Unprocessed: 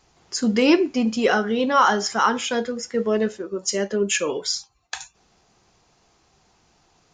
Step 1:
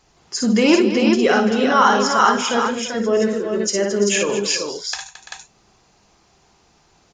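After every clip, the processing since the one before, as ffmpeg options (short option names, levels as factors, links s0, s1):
-af "aecho=1:1:54|59|153|220|339|389:0.376|0.473|0.106|0.251|0.224|0.596,volume=1.19"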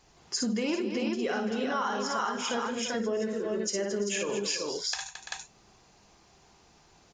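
-af "bandreject=f=1300:w=30,acompressor=threshold=0.0562:ratio=6,volume=0.708"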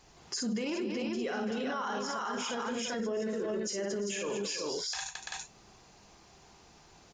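-af "alimiter=level_in=1.78:limit=0.0631:level=0:latency=1:release=22,volume=0.562,volume=1.26"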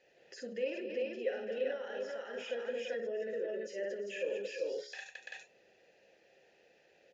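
-filter_complex "[0:a]asplit=3[s0][s1][s2];[s0]bandpass=f=530:t=q:w=8,volume=1[s3];[s1]bandpass=f=1840:t=q:w=8,volume=0.501[s4];[s2]bandpass=f=2480:t=q:w=8,volume=0.355[s5];[s3][s4][s5]amix=inputs=3:normalize=0,bandreject=f=69.92:t=h:w=4,bandreject=f=139.84:t=h:w=4,bandreject=f=209.76:t=h:w=4,bandreject=f=279.68:t=h:w=4,bandreject=f=349.6:t=h:w=4,bandreject=f=419.52:t=h:w=4,bandreject=f=489.44:t=h:w=4,bandreject=f=559.36:t=h:w=4,bandreject=f=629.28:t=h:w=4,bandreject=f=699.2:t=h:w=4,bandreject=f=769.12:t=h:w=4,bandreject=f=839.04:t=h:w=4,bandreject=f=908.96:t=h:w=4,bandreject=f=978.88:t=h:w=4,bandreject=f=1048.8:t=h:w=4,bandreject=f=1118.72:t=h:w=4,bandreject=f=1188.64:t=h:w=4,bandreject=f=1258.56:t=h:w=4,bandreject=f=1328.48:t=h:w=4,volume=2.24"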